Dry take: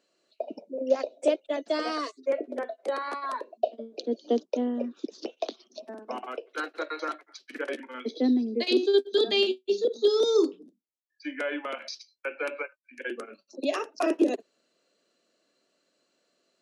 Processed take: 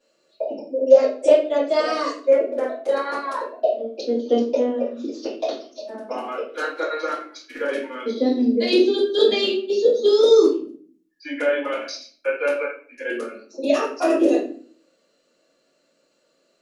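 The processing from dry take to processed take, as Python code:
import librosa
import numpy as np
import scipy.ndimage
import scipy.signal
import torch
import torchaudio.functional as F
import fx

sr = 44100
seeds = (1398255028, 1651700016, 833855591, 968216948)

y = fx.room_shoebox(x, sr, seeds[0], volume_m3=42.0, walls='mixed', distance_m=2.5)
y = F.gain(torch.from_numpy(y), -5.5).numpy()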